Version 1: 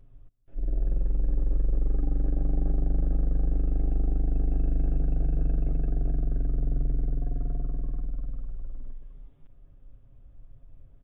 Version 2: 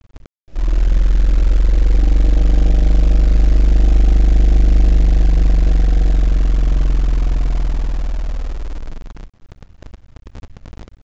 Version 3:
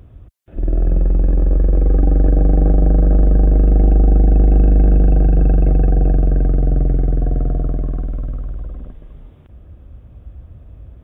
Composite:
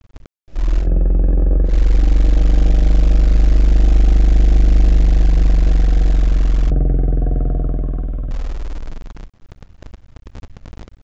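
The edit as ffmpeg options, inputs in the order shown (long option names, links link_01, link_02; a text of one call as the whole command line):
ffmpeg -i take0.wav -i take1.wav -i take2.wav -filter_complex "[2:a]asplit=2[link_01][link_02];[1:a]asplit=3[link_03][link_04][link_05];[link_03]atrim=end=0.88[link_06];[link_01]atrim=start=0.78:end=1.74[link_07];[link_04]atrim=start=1.64:end=6.702[link_08];[link_02]atrim=start=6.698:end=8.312[link_09];[link_05]atrim=start=8.308[link_10];[link_06][link_07]acrossfade=duration=0.1:curve1=tri:curve2=tri[link_11];[link_11][link_08]acrossfade=duration=0.1:curve1=tri:curve2=tri[link_12];[link_12][link_09]acrossfade=duration=0.004:curve1=hsin:curve2=hsin[link_13];[link_13][link_10]acrossfade=duration=0.004:curve1=hsin:curve2=hsin" out.wav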